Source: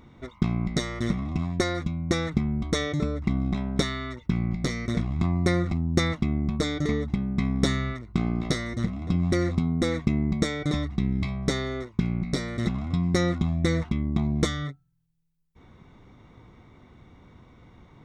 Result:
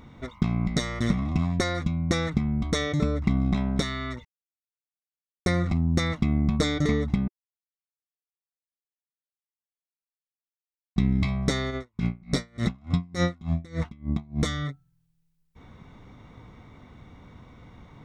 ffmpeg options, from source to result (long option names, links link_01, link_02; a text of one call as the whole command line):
ffmpeg -i in.wav -filter_complex "[0:a]asplit=3[link_01][link_02][link_03];[link_01]afade=type=out:start_time=11.7:duration=0.02[link_04];[link_02]aeval=exprs='val(0)*pow(10,-28*(0.5-0.5*cos(2*PI*3.4*n/s))/20)':channel_layout=same,afade=type=in:start_time=11.7:duration=0.02,afade=type=out:start_time=14.44:duration=0.02[link_05];[link_03]afade=type=in:start_time=14.44:duration=0.02[link_06];[link_04][link_05][link_06]amix=inputs=3:normalize=0,asplit=5[link_07][link_08][link_09][link_10][link_11];[link_07]atrim=end=4.25,asetpts=PTS-STARTPTS,afade=type=out:start_time=4.246:duration=0.004:curve=hsin[link_12];[link_08]atrim=start=4.25:end=5.46,asetpts=PTS-STARTPTS,volume=0[link_13];[link_09]atrim=start=5.46:end=7.28,asetpts=PTS-STARTPTS,afade=type=in:duration=0.004:curve=hsin,afade=type=out:start_time=1.816:duration=0.004:curve=hsin[link_14];[link_10]atrim=start=7.28:end=10.96,asetpts=PTS-STARTPTS,volume=0[link_15];[link_11]atrim=start=10.96,asetpts=PTS-STARTPTS,afade=type=in:duration=0.004:curve=hsin[link_16];[link_12][link_13][link_14][link_15][link_16]concat=n=5:v=0:a=1,equalizer=frequency=360:width_type=o:width=0.25:gain=-6,alimiter=limit=-14dB:level=0:latency=1:release=440,volume=3.5dB" out.wav